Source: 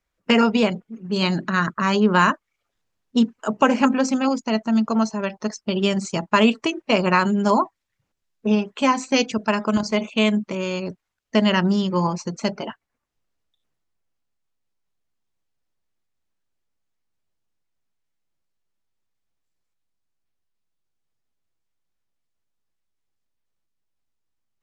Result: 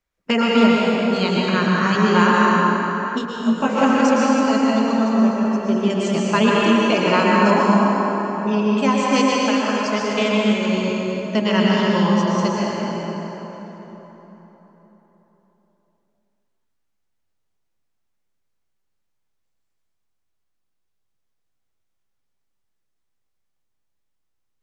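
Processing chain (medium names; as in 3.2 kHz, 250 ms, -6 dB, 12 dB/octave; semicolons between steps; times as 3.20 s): 4.98–5.90 s: treble shelf 2.1 kHz -12 dB; 9.33–9.86 s: high-pass 720 Hz 6 dB/octave; reverberation RT60 4.1 s, pre-delay 102 ms, DRR -5 dB; 3.17–3.76 s: detune thickener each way 41 cents -> 21 cents; trim -2.5 dB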